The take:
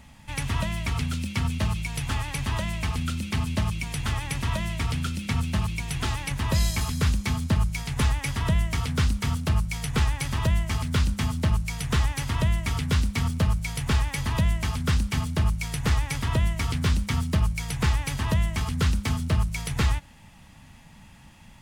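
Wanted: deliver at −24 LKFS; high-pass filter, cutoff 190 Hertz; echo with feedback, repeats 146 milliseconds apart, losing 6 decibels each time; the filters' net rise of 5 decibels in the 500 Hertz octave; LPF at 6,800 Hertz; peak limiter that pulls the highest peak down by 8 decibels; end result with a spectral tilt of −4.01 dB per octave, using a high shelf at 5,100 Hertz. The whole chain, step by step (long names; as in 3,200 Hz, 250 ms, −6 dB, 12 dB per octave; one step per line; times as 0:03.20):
high-pass filter 190 Hz
low-pass filter 6,800 Hz
parametric band 500 Hz +6.5 dB
high-shelf EQ 5,100 Hz +5 dB
brickwall limiter −19.5 dBFS
repeating echo 146 ms, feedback 50%, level −6 dB
level +6.5 dB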